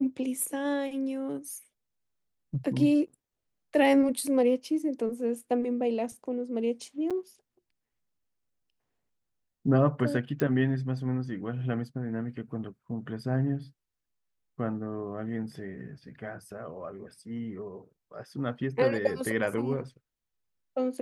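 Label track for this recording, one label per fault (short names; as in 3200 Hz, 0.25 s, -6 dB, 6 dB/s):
7.100000	7.110000	gap 6.6 ms
10.400000	10.400000	pop -16 dBFS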